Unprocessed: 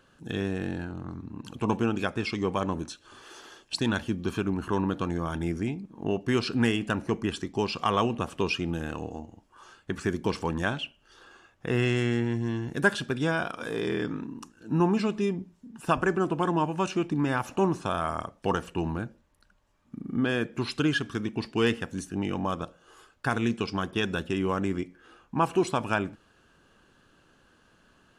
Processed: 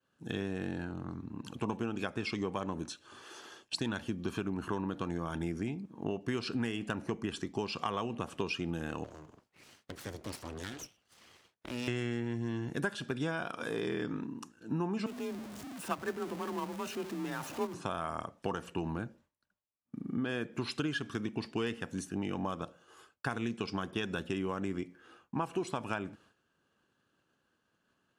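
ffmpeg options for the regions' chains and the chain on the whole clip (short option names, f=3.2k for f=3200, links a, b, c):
-filter_complex "[0:a]asettb=1/sr,asplit=3[a][b][c];[a]atrim=end=9.044[d];[b]atrim=start=9.04:end=11.88,asetpts=PTS-STARTPTS,afade=t=in:d=0.004:c=qsin,afade=t=out:st=2.836:d=0.004:c=qsin,equalizer=f=4.6k:w=6.2:g=6.5,acrossover=split=170|3000[e][f][g];[f]acompressor=threshold=-44dB:ratio=2.5:attack=3.2:release=140:knee=2.83:detection=peak[h];[e][h][g]amix=inputs=3:normalize=0,aeval=exprs='abs(val(0))':c=same[i];[c]atrim=start=11.876[j];[d][i]acrossfade=d=0.004:c1=hsin:c2=qsin[k];[k][j]acrossfade=d=0.004:c1=qsin:c2=hsin,asettb=1/sr,asplit=3[l][m][n];[l]atrim=end=15.064[o];[m]atrim=start=15.06:end=17.74,asetpts=PTS-STARTPTS,afade=t=in:d=0.004:c=qsin,afade=t=out:st=2.676:d=0.004:c=qsin,aeval=exprs='val(0)+0.5*0.0562*sgn(val(0))':c=same,afreqshift=33,agate=range=-12dB:threshold=-20dB:ratio=16:release=100:detection=peak[p];[n]atrim=start=17.736[q];[o][p]acrossfade=d=0.004:c1=hsin:c2=qsin[r];[r][q]acrossfade=d=0.004:c1=qsin:c2=hsin,agate=range=-33dB:threshold=-52dB:ratio=3:detection=peak,highpass=90,acompressor=threshold=-28dB:ratio=6,volume=-2.5dB"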